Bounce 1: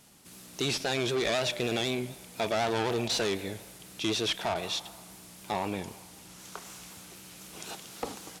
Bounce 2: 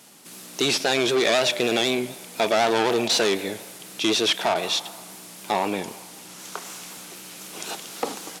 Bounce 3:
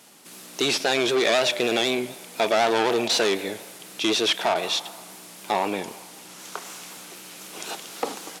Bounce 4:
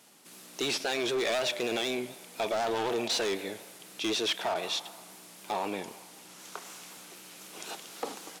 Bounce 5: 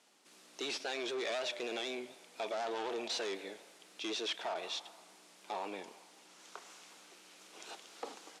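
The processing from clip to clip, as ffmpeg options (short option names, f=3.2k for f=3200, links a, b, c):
-af "highpass=220,volume=8.5dB"
-af "bass=f=250:g=-4,treble=f=4k:g=-2"
-af "volume=17dB,asoftclip=hard,volume=-17dB,volume=-7dB"
-af "highpass=270,lowpass=7.5k,volume=-7.5dB"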